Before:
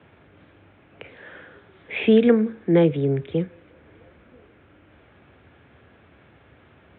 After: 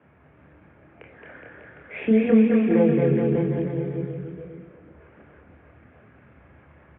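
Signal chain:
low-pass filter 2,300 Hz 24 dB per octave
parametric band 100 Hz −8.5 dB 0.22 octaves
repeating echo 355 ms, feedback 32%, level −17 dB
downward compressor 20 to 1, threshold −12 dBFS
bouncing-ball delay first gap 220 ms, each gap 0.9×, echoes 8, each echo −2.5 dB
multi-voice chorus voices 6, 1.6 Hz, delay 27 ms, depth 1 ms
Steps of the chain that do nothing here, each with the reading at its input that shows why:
all steps act on this source

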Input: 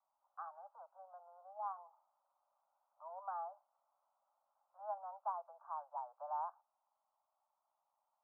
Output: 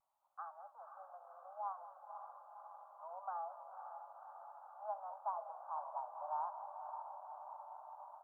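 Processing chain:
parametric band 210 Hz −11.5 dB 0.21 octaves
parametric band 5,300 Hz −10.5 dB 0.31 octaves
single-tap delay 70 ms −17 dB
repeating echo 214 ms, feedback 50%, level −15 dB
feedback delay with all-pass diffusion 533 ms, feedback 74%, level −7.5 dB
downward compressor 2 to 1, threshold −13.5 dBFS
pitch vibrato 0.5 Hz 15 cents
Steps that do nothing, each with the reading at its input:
parametric band 210 Hz: nothing at its input below 510 Hz
parametric band 5,300 Hz: nothing at its input above 1,500 Hz
downward compressor, threshold −13.5 dBFS: peak of its input −29.5 dBFS

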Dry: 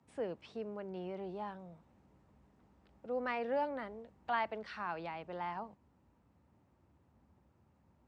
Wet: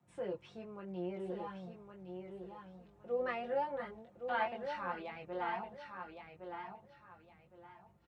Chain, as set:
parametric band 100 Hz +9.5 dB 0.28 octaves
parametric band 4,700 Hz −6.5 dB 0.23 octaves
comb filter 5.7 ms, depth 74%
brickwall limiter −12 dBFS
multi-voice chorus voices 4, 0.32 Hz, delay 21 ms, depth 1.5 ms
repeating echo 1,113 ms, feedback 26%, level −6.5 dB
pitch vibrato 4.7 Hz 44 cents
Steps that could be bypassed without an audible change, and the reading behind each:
brickwall limiter −12 dBFS: peak of its input −22.0 dBFS

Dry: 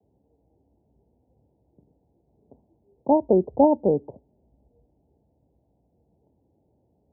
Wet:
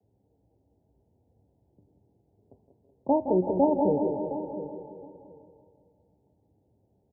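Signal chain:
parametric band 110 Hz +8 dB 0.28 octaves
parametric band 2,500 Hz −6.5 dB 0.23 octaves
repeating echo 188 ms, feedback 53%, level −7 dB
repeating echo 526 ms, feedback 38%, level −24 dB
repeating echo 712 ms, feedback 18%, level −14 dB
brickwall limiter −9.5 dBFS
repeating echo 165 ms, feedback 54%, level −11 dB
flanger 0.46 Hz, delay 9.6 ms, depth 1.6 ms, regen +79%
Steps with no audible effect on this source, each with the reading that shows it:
parametric band 2,500 Hz: nothing at its input above 960 Hz

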